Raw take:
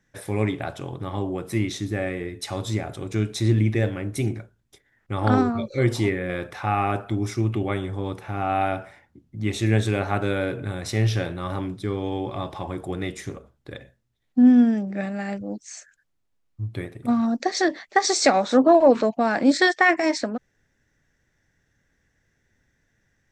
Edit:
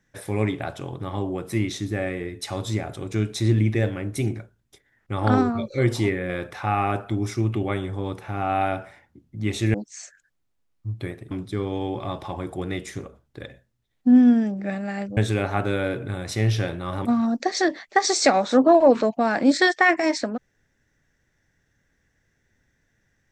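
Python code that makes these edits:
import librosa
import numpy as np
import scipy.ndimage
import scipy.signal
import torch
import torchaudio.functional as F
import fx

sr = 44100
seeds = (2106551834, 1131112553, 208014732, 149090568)

y = fx.edit(x, sr, fx.swap(start_s=9.74, length_s=1.88, other_s=15.48, other_length_s=1.57), tone=tone)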